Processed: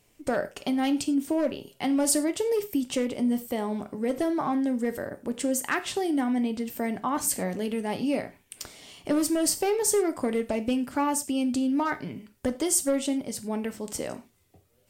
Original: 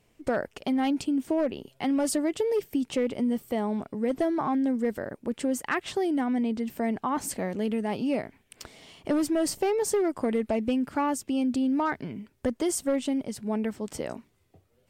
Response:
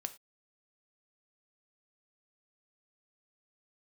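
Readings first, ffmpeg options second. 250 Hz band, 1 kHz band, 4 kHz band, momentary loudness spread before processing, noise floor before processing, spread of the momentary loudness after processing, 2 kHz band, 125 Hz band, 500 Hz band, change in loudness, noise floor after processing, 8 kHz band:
0.0 dB, +0.5 dB, +4.0 dB, 8 LU, -68 dBFS, 10 LU, +1.5 dB, -0.5 dB, 0.0 dB, +1.0 dB, -65 dBFS, +7.5 dB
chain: -filter_complex "[0:a]highshelf=f=4700:g=10[s0];[1:a]atrim=start_sample=2205[s1];[s0][s1]afir=irnorm=-1:irlink=0,volume=1.19"

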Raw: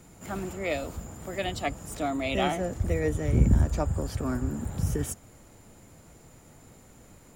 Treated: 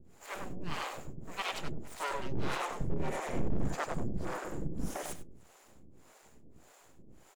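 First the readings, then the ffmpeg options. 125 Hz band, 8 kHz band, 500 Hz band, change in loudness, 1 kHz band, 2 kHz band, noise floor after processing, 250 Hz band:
-12.5 dB, -7.0 dB, -9.0 dB, -9.0 dB, -4.0 dB, -4.5 dB, -61 dBFS, -9.5 dB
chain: -filter_complex "[0:a]aecho=1:1:98|196|294|392:0.631|0.196|0.0606|0.0188,aeval=exprs='abs(val(0))':c=same,acrossover=split=440[s0][s1];[s0]aeval=exprs='val(0)*(1-1/2+1/2*cos(2*PI*1.7*n/s))':c=same[s2];[s1]aeval=exprs='val(0)*(1-1/2-1/2*cos(2*PI*1.7*n/s))':c=same[s3];[s2][s3]amix=inputs=2:normalize=0,asoftclip=type=hard:threshold=0.075,highshelf=f=6300:g=-6"

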